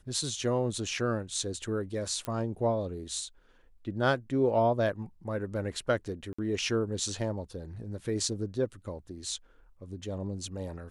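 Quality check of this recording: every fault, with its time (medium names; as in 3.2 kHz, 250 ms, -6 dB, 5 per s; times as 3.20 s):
2.25 s: pop -20 dBFS
6.33–6.38 s: dropout 55 ms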